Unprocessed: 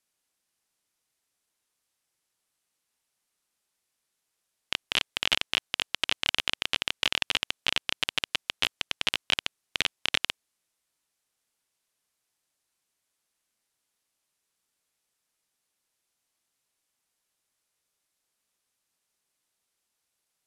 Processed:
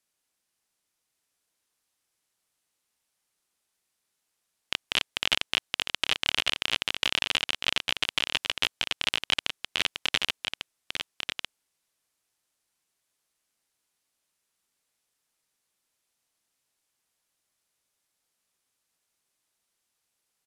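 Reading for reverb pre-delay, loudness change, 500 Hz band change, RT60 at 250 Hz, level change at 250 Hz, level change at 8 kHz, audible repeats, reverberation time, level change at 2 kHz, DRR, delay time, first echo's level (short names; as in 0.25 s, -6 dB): none, +0.5 dB, +1.0 dB, none, +1.0 dB, +1.0 dB, 1, none, +1.0 dB, none, 1.147 s, -6.0 dB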